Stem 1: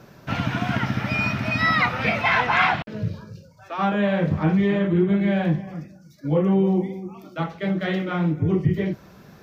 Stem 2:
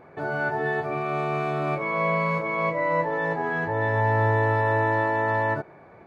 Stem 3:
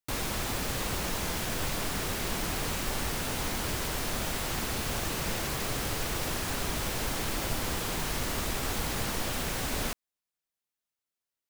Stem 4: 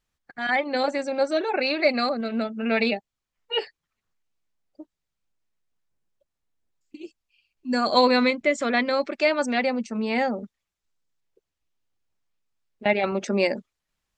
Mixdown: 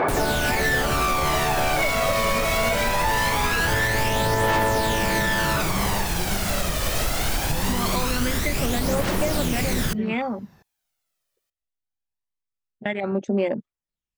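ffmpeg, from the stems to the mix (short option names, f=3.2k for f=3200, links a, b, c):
-filter_complex "[0:a]adelay=1200,volume=-15dB[a];[1:a]asplit=2[b][c];[c]highpass=f=720:p=1,volume=36dB,asoftclip=type=tanh:threshold=-11.5dB[d];[b][d]amix=inputs=2:normalize=0,lowpass=f=3.6k:p=1,volume=-6dB,volume=-7.5dB[e];[2:a]volume=2dB[f];[3:a]afwtdn=0.0355,acompressor=threshold=-22dB:ratio=5,volume=-5.5dB[g];[a][e][f][g]amix=inputs=4:normalize=0,acontrast=77,aphaser=in_gain=1:out_gain=1:delay=1.7:decay=0.47:speed=0.22:type=triangular,alimiter=limit=-13dB:level=0:latency=1:release=229"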